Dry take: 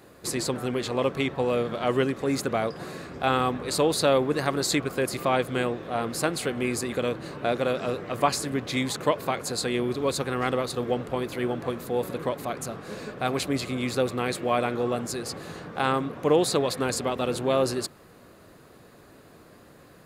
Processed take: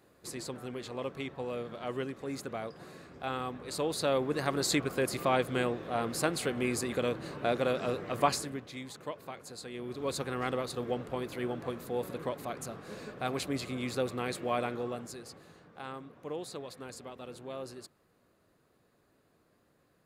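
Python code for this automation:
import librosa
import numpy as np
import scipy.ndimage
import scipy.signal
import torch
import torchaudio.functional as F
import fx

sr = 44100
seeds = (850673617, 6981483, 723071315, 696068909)

y = fx.gain(x, sr, db=fx.line((3.51, -12.0), (4.67, -4.0), (8.32, -4.0), (8.72, -16.0), (9.71, -16.0), (10.13, -7.0), (14.64, -7.0), (15.58, -18.0)))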